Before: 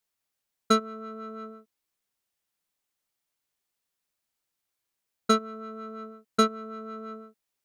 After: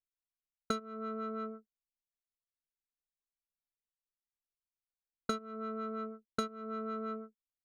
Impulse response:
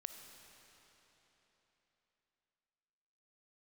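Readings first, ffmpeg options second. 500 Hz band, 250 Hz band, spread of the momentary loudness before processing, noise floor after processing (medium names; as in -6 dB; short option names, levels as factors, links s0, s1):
-8.5 dB, -8.5 dB, 17 LU, under -85 dBFS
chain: -af "anlmdn=0.158,acompressor=threshold=0.0224:ratio=10,volume=1.12"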